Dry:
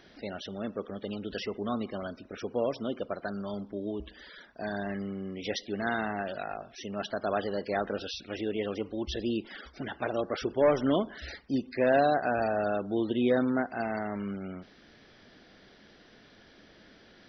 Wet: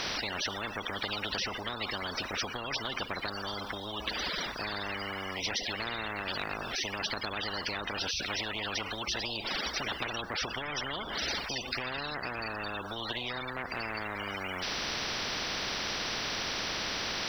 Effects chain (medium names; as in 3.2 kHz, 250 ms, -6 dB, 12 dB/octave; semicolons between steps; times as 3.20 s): bass shelf 380 Hz -6 dB; compression, threshold -37 dBFS, peak gain reduction 15 dB; spectrum-flattening compressor 10:1; trim +7.5 dB